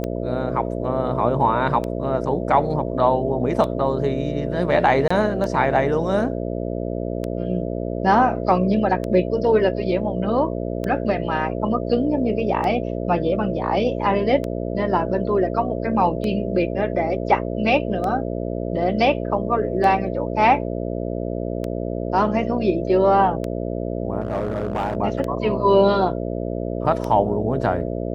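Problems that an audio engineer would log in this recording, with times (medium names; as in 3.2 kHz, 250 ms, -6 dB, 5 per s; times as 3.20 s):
buzz 60 Hz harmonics 11 -26 dBFS
tick 33 1/3 rpm -15 dBFS
5.08–5.11 s: dropout 25 ms
24.20–24.97 s: clipped -18.5 dBFS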